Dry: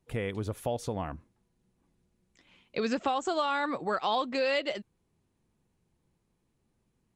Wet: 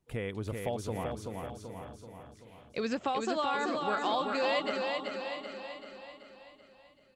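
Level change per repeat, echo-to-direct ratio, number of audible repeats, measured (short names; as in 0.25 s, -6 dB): no steady repeat, -2.0 dB, 11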